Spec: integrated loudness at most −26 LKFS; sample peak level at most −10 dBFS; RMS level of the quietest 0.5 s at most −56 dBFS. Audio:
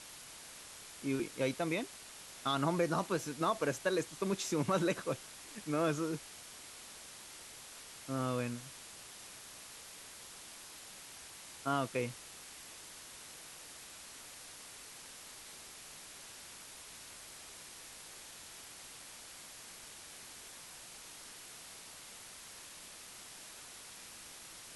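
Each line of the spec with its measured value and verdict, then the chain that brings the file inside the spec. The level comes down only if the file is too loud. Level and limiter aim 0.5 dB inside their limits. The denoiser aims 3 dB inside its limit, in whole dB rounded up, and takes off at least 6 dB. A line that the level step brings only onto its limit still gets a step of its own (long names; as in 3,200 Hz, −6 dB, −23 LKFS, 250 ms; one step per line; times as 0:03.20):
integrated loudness −41.0 LKFS: in spec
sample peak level −19.5 dBFS: in spec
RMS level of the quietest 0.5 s −52 dBFS: out of spec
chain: broadband denoise 7 dB, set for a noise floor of −52 dBFS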